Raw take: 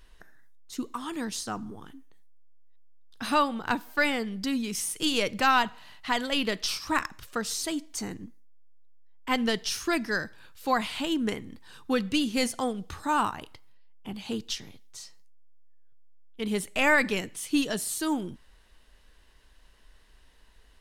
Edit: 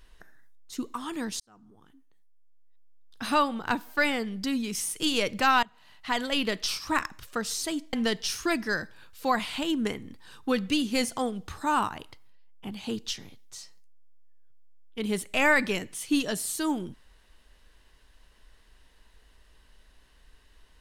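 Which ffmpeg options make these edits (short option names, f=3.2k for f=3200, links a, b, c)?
-filter_complex "[0:a]asplit=4[a][b][c][d];[a]atrim=end=1.4,asetpts=PTS-STARTPTS,afade=t=out:st=1.396:d=0.004:c=hsin[e];[b]atrim=start=1.4:end=5.63,asetpts=PTS-STARTPTS,afade=t=in:d=1.82,afade=t=out:st=4.226:d=0.004:c=hsin:silence=0.1[f];[c]atrim=start=5.63:end=7.932,asetpts=PTS-STARTPTS,afade=t=in:d=0.57:silence=0.1[g];[d]atrim=start=9.348[h];[e][f][g]concat=n=3:v=0:a=1[i];[i][h]acrossfade=d=0.004:c1=hsin:c2=hsin"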